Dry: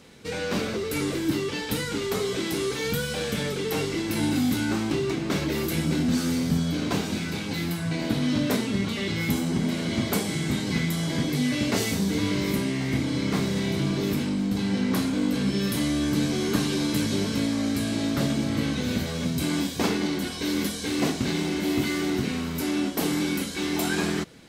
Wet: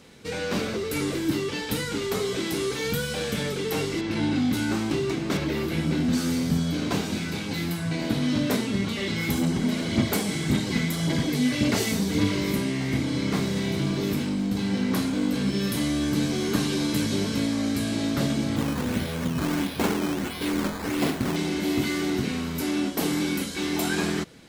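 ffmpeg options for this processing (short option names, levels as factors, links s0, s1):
-filter_complex "[0:a]asplit=3[s0][s1][s2];[s0]afade=t=out:st=4:d=0.02[s3];[s1]lowpass=4500,afade=t=in:st=4:d=0.02,afade=t=out:st=4.52:d=0.02[s4];[s2]afade=t=in:st=4.52:d=0.02[s5];[s3][s4][s5]amix=inputs=3:normalize=0,asettb=1/sr,asplit=3[s6][s7][s8];[s6]atrim=end=5.374[s9];[s7]atrim=start=5.37:end=6.13,asetpts=PTS-STARTPTS,afade=t=in:d=0.004:c=qsin,afade=t=out:st=0.756:d=0.004:c=qsin,acrossover=split=4400[s10][s11];[s11]acompressor=threshold=0.00447:ratio=4:attack=1:release=60[s12];[s10][s12]amix=inputs=2:normalize=0[s13];[s8]atrim=start=6.126[s14];[s9][s13]acrossfade=d=0.004:c1=hsin:c2=qsin[s15];[s15][s14]acrossfade=d=0.004:c1=qsin:c2=hsin,asplit=3[s16][s17][s18];[s16]afade=t=out:st=8.98:d=0.02[s19];[s17]aphaser=in_gain=1:out_gain=1:delay=4.7:decay=0.37:speed=1.8:type=sinusoidal,afade=t=in:st=8.98:d=0.02,afade=t=out:st=12.39:d=0.02[s20];[s18]afade=t=in:st=12.39:d=0.02[s21];[s19][s20][s21]amix=inputs=3:normalize=0,asettb=1/sr,asplit=3[s22][s23][s24];[s22]atrim=end=13.354[s25];[s23]atrim=start=13.35:end=16.59,asetpts=PTS-STARTPTS,afade=t=in:d=0.004:c=qsin,afade=t=out:st=3.236:d=0.004:c=qsin,aeval=exprs='sgn(val(0))*max(abs(val(0))-0.00282,0)':c=same[s26];[s24]atrim=start=16.586[s27];[s25][s26]acrossfade=d=0.004:c1=hsin:c2=qsin[s28];[s28][s27]acrossfade=d=0.004:c1=qsin:c2=hsin,asettb=1/sr,asplit=3[s29][s30][s31];[s29]atrim=end=18.564[s32];[s30]atrim=start=18.56:end=21.36,asetpts=PTS-STARTPTS,afade=t=in:d=0.004:c=qsin,afade=t=out:st=2.796:d=0.004:c=qsin,acrusher=samples=11:mix=1:aa=0.000001:lfo=1:lforange=11:lforate=1.5[s33];[s31]atrim=start=21.356[s34];[s32][s33]acrossfade=d=0.004:c1=hsin:c2=qsin[s35];[s35][s34]acrossfade=d=0.004:c1=qsin:c2=hsin"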